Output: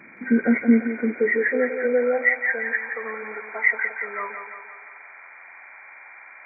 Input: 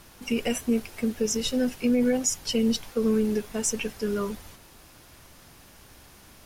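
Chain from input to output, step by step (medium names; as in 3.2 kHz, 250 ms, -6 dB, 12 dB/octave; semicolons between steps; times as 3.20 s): knee-point frequency compression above 1.3 kHz 4:1; thinning echo 172 ms, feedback 56%, high-pass 210 Hz, level -7.5 dB; high-pass sweep 230 Hz -> 850 Hz, 0.69–2.77 s; trim +1 dB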